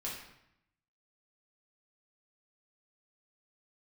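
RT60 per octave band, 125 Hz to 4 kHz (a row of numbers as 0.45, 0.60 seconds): 1.1, 0.95, 0.75, 0.80, 0.80, 0.65 seconds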